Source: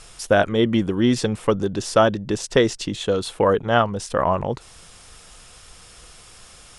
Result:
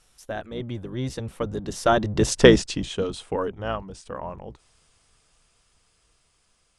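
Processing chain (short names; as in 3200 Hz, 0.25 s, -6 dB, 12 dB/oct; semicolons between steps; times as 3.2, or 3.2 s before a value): octaver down 1 oct, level -3 dB; Doppler pass-by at 2.37, 18 m/s, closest 3.7 m; gain +4.5 dB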